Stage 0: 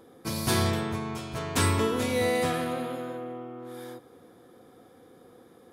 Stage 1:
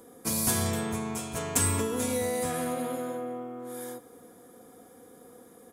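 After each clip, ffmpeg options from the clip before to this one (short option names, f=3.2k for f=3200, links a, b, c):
-filter_complex "[0:a]aecho=1:1:4.2:0.4,acrossover=split=120[a][b];[b]acompressor=threshold=-27dB:ratio=6[c];[a][c]amix=inputs=2:normalize=0,highshelf=f=5.7k:t=q:w=1.5:g=9"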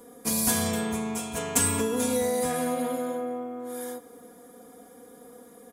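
-af "aecho=1:1:4.2:0.61"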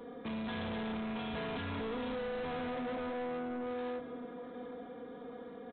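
-af "acompressor=threshold=-28dB:ratio=6,aecho=1:1:768|1536|2304:0.158|0.0571|0.0205,aresample=8000,asoftclip=type=tanh:threshold=-39dB,aresample=44100,volume=3dB"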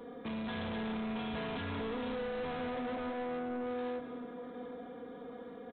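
-af "aecho=1:1:259:0.178"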